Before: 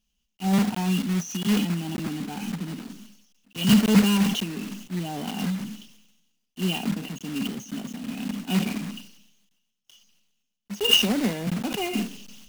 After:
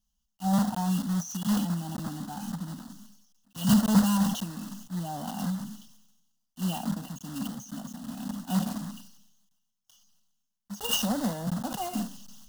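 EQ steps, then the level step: dynamic EQ 500 Hz, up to +5 dB, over -37 dBFS, Q 1.1; fixed phaser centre 970 Hz, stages 4; -1.0 dB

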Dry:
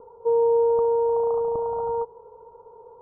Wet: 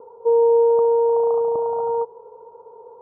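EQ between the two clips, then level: band-pass 570 Hz, Q 0.57; +4.5 dB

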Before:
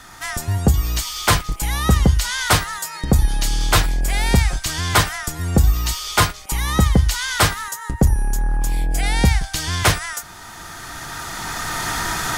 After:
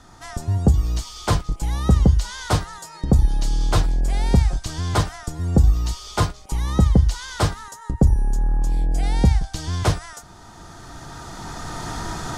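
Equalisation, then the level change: air absorption 56 m; bell 2100 Hz -13 dB 1.9 oct; high shelf 7300 Hz -6 dB; 0.0 dB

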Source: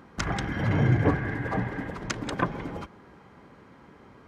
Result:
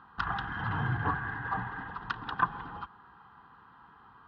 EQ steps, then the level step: air absorption 350 m; resonant low shelf 500 Hz -12 dB, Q 1.5; fixed phaser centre 2200 Hz, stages 6; +3.5 dB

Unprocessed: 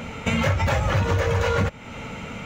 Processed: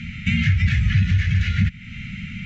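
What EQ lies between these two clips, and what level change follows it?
elliptic band-stop 200–1900 Hz, stop band 40 dB; air absorption 140 m; high shelf 5800 Hz -6 dB; +6.0 dB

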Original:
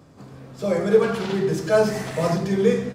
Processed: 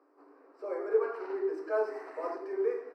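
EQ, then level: running mean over 13 samples; rippled Chebyshev high-pass 280 Hz, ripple 6 dB; -7.5 dB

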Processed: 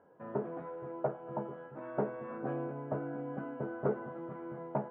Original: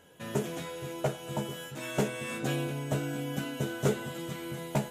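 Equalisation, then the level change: HPF 400 Hz 6 dB/oct; inverse Chebyshev low-pass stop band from 6800 Hz, stop band 80 dB; 0.0 dB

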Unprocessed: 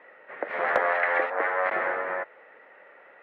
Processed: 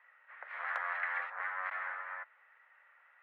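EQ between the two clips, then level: ladder high-pass 920 Hz, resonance 30%; -5.5 dB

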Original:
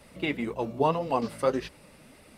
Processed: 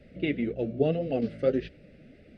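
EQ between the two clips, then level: dynamic EQ 3300 Hz, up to +4 dB, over -47 dBFS, Q 1.4; Butterworth band-stop 1000 Hz, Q 1; tape spacing loss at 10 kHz 35 dB; +3.5 dB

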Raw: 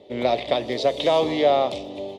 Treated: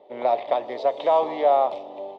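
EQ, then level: band-pass 890 Hz, Q 2.1; +5.0 dB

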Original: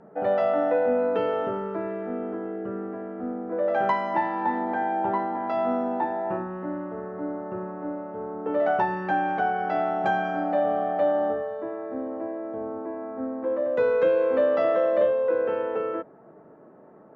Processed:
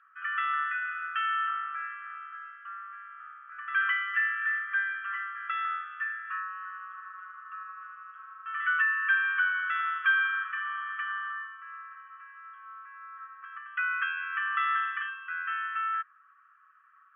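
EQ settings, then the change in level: brick-wall FIR band-pass 1100–3400 Hz; dynamic EQ 1800 Hz, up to +6 dB, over -50 dBFS, Q 2.8; notch 2100 Hz, Q 7.3; +5.5 dB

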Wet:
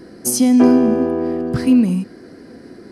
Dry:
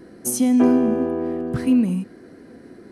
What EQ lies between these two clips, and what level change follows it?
bell 4900 Hz +10.5 dB 0.31 oct; +4.5 dB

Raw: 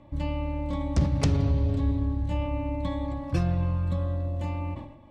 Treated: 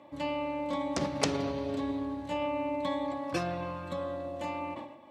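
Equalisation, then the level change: HPF 370 Hz 12 dB/oct; +3.5 dB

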